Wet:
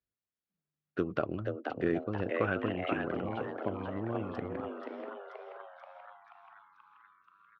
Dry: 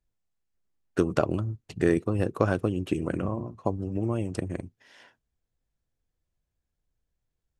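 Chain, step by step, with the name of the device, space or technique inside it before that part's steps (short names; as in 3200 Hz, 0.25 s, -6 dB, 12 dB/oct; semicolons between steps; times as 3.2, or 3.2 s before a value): frequency-shifting delay pedal into a guitar cabinet (frequency-shifting echo 0.482 s, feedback 59%, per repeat +150 Hz, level -5 dB; speaker cabinet 96–3800 Hz, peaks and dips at 140 Hz -4 dB, 910 Hz -5 dB, 1400 Hz +4 dB); 2.29–3.08 EQ curve 820 Hz 0 dB, 2700 Hz +9 dB, 4800 Hz -6 dB, 7700 Hz +3 dB; gain -7.5 dB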